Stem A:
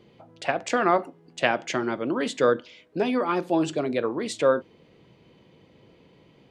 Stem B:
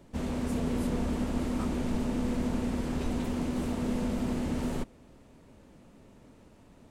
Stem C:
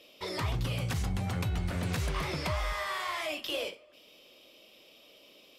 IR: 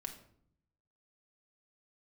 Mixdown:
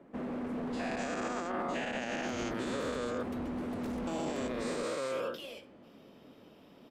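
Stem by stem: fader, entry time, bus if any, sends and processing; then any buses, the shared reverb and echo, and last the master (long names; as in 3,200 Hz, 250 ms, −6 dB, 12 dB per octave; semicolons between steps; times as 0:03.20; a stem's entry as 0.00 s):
−17.0 dB, 0.55 s, muted 0:03.23–0:04.07, no bus, no send, every bin's largest magnitude spread in time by 480 ms
+2.0 dB, 0.00 s, bus A, no send, three-way crossover with the lows and the highs turned down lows −23 dB, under 180 Hz, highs −22 dB, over 2,200 Hz; notch filter 920 Hz, Q 12
−11.5 dB, 1.90 s, bus A, no send, no processing
bus A: 0.0 dB, hard clipping −31 dBFS, distortion −11 dB; downward compressor 2 to 1, threshold −37 dBFS, peak gain reduction 3 dB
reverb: not used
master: brickwall limiter −26.5 dBFS, peak gain reduction 9.5 dB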